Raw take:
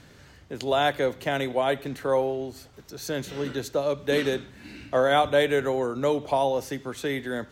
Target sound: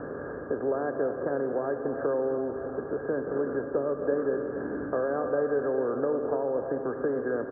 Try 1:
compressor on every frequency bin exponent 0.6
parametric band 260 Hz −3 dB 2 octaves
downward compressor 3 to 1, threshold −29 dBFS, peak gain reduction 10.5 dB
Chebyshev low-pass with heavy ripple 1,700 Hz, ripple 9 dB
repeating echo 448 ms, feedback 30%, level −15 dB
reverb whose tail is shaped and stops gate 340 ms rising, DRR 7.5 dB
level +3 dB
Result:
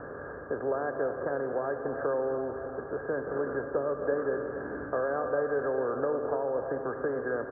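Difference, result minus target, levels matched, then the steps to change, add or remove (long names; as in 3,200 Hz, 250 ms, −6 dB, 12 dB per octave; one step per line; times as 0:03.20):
250 Hz band −3.0 dB
change: parametric band 260 Hz +5.5 dB 2 octaves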